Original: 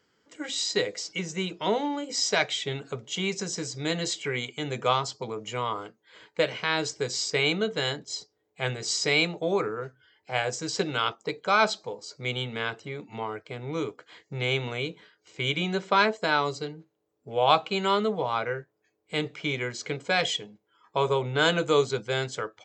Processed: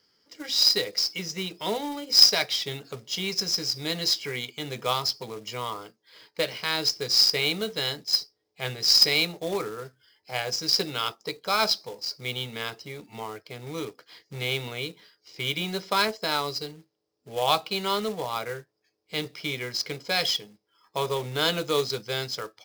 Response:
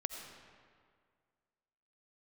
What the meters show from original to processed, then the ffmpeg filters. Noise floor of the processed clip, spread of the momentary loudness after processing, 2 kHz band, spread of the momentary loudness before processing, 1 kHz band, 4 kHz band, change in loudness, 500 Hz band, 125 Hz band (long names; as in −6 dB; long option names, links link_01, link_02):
−77 dBFS, 17 LU, −2.5 dB, 12 LU, −3.0 dB, +7.0 dB, +2.5 dB, −3.5 dB, −3.5 dB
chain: -af "lowpass=frequency=5100:width_type=q:width=7.8,acrusher=bits=3:mode=log:mix=0:aa=0.000001,bandreject=frequency=1500:width=24,volume=-3.5dB"